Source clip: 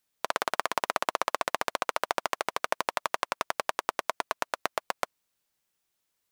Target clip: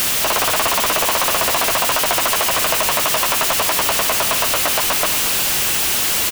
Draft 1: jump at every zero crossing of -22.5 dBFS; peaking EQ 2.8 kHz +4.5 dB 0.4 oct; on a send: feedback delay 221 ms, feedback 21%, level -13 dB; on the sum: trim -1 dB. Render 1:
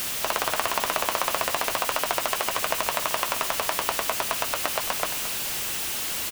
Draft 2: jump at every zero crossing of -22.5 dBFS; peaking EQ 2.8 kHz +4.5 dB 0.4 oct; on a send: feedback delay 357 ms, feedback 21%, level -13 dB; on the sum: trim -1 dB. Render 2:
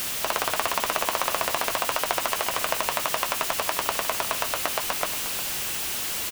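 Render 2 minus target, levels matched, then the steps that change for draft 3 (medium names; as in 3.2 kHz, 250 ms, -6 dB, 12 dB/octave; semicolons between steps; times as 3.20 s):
jump at every zero crossing: distortion -7 dB
change: jump at every zero crossing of -11 dBFS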